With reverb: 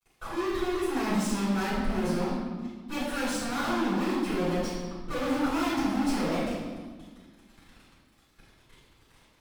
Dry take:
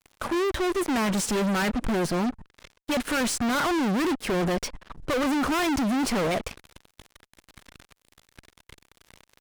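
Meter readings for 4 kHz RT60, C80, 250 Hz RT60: 1.1 s, 2.0 dB, 2.3 s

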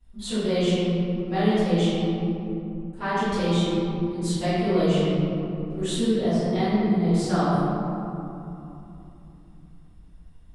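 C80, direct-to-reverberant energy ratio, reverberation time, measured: -2.5 dB, -19.5 dB, 3.0 s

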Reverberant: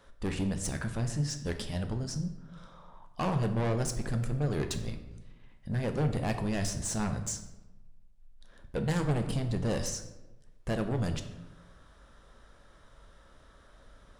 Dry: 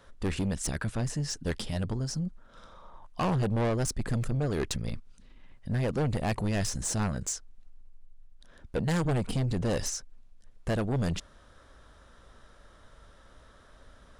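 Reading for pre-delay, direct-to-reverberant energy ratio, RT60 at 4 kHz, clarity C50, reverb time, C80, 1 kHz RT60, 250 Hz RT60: 4 ms, 6.0 dB, 0.65 s, 9.5 dB, 1.1 s, 12.0 dB, 1.0 s, 1.2 s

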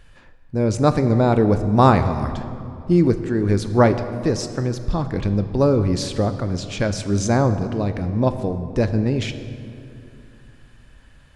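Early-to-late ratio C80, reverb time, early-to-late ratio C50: 11.5 dB, 2.7 s, 11.0 dB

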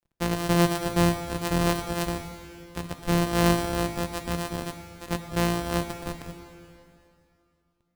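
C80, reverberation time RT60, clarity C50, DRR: 9.0 dB, 2.7 s, 8.0 dB, 7.5 dB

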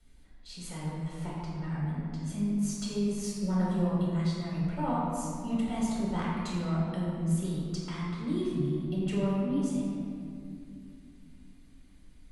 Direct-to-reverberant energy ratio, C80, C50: -6.5 dB, 0.0 dB, -2.0 dB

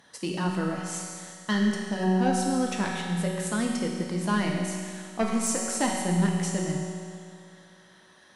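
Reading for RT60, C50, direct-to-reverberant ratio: 2.2 s, 1.0 dB, -1.5 dB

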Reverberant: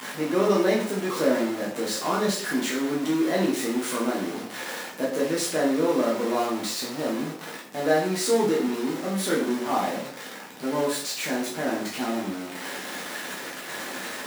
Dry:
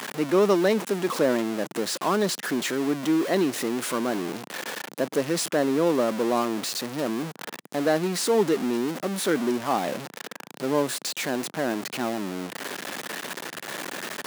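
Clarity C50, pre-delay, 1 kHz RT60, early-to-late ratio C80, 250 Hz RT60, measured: 5.0 dB, 5 ms, 0.55 s, 9.0 dB, 0.55 s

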